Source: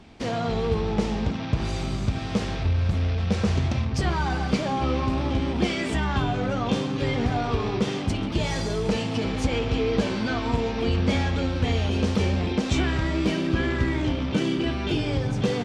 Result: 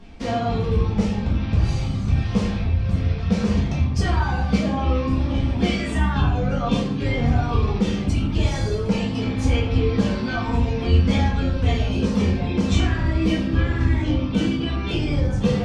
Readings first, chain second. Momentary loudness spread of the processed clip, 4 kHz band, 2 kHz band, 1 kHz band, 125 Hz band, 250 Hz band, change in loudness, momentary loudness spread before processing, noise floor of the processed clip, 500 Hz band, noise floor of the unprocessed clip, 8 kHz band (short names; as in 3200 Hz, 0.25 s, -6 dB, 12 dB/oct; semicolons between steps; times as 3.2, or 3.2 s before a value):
3 LU, 0.0 dB, +1.0 dB, +1.0 dB, +5.0 dB, +3.5 dB, +3.5 dB, 3 LU, -26 dBFS, +0.5 dB, -29 dBFS, 0.0 dB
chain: reverb removal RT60 1.7 s; low shelf 140 Hz +7.5 dB; shoebox room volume 190 m³, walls mixed, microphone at 1.7 m; gain -3.5 dB